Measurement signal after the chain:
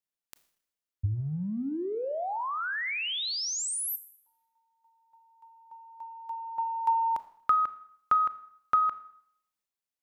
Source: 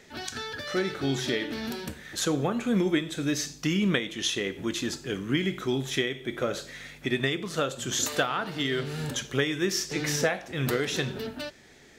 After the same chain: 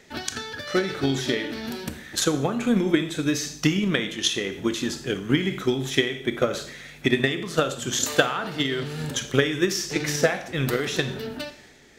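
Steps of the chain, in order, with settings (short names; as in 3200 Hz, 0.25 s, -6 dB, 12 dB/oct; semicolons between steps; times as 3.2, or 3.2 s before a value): transient shaper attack +9 dB, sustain +5 dB; Schroeder reverb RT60 0.66 s, combs from 26 ms, DRR 12.5 dB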